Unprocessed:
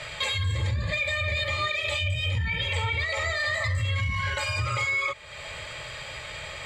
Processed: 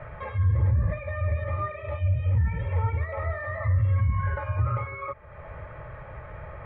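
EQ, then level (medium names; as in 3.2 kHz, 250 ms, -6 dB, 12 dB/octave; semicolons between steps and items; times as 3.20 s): low-pass 1.5 kHz 24 dB/octave; distance through air 140 m; bass shelf 130 Hz +8 dB; 0.0 dB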